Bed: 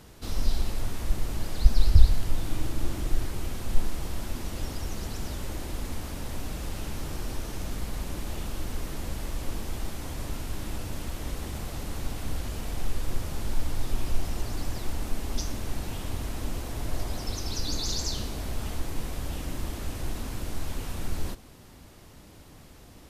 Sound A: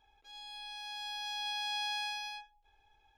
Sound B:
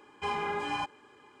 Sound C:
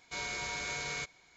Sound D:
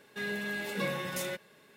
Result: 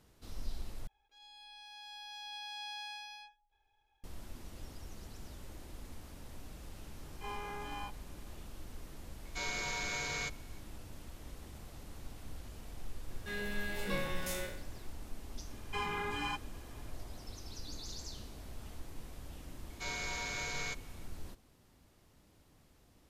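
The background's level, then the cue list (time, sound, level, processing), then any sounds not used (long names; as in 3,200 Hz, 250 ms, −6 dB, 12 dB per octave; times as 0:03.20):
bed −15 dB
0:00.87: overwrite with A −8 dB
0:07.02: mix in B −14 dB + every bin's largest magnitude spread in time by 60 ms
0:09.24: mix in C −0.5 dB
0:13.10: mix in D −5.5 dB + peak hold with a decay on every bin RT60 0.61 s
0:15.51: mix in B −1.5 dB + parametric band 610 Hz −11 dB 1 octave
0:19.69: mix in C −2 dB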